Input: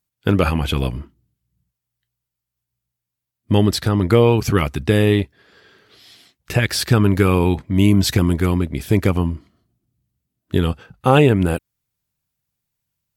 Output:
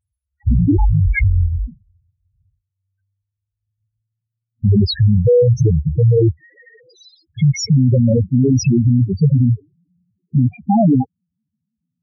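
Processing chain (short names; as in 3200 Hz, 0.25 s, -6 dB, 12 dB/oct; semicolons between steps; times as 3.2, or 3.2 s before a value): speed glide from 54% -> 165%; HPF 47 Hz 6 dB/oct; loudest bins only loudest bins 2; maximiser +19.5 dB; gain -6 dB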